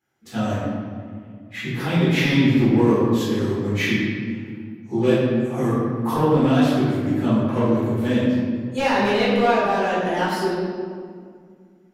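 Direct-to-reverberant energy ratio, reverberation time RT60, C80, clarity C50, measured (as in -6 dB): -12.5 dB, 2.1 s, 0.0 dB, -2.0 dB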